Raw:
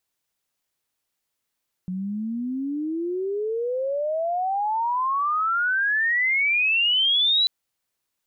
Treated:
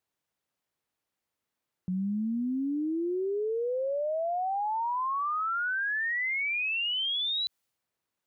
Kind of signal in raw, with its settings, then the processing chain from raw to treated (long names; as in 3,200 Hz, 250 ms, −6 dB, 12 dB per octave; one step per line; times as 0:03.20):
glide logarithmic 180 Hz → 4,000 Hz −26 dBFS → −16.5 dBFS 5.59 s
high-pass filter 58 Hz
brickwall limiter −27 dBFS
one half of a high-frequency compander decoder only